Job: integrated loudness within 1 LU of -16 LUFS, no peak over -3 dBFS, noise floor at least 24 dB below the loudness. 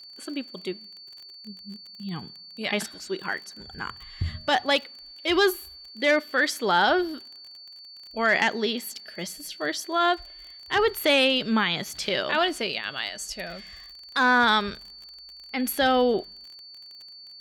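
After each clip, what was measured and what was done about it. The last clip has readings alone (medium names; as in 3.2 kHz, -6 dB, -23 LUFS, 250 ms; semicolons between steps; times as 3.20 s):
tick rate 28 per s; steady tone 4.5 kHz; tone level -43 dBFS; loudness -25.0 LUFS; peak level -10.0 dBFS; loudness target -16.0 LUFS
-> de-click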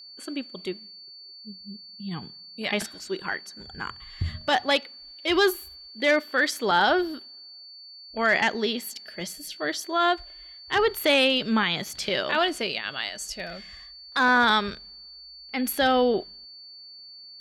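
tick rate 0.057 per s; steady tone 4.5 kHz; tone level -43 dBFS
-> band-stop 4.5 kHz, Q 30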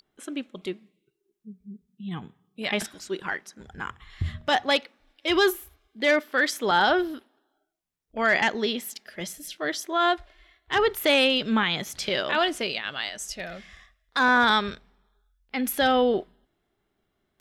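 steady tone not found; loudness -25.0 LUFS; peak level -11.0 dBFS; loudness target -16.0 LUFS
-> trim +9 dB; peak limiter -3 dBFS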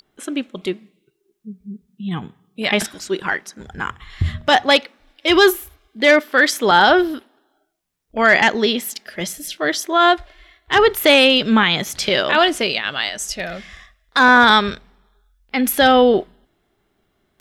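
loudness -16.0 LUFS; peak level -3.0 dBFS; noise floor -68 dBFS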